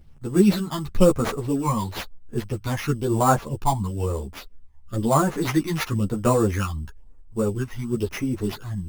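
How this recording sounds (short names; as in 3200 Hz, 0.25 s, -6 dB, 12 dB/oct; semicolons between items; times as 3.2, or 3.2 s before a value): phasing stages 12, 1 Hz, lowest notch 440–4500 Hz; aliases and images of a low sample rate 8200 Hz, jitter 0%; a shimmering, thickened sound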